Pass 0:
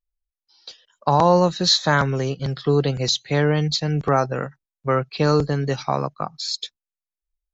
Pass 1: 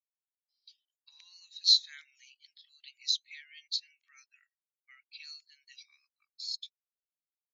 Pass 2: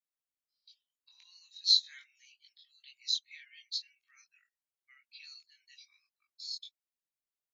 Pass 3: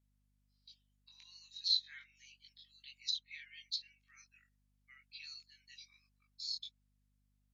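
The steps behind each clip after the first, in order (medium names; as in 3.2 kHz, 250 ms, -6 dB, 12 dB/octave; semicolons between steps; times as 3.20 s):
Chebyshev high-pass 2.2 kHz, order 4; spectral contrast expander 1.5:1; trim -5 dB
chorus voices 6, 0.43 Hz, delay 21 ms, depth 4.3 ms
low-pass that closes with the level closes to 2.7 kHz, closed at -32 dBFS; hum 50 Hz, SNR 31 dB; trim +1 dB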